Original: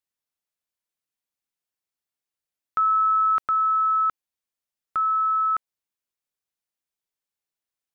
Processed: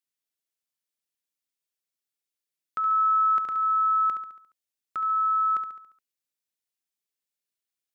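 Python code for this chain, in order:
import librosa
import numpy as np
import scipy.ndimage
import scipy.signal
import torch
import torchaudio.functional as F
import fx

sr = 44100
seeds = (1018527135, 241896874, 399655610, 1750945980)

y = fx.highpass(x, sr, hz=230.0, slope=6)
y = fx.peak_eq(y, sr, hz=940.0, db=-8.0, octaves=1.8)
y = fx.echo_feedback(y, sr, ms=70, feedback_pct=51, wet_db=-8.0)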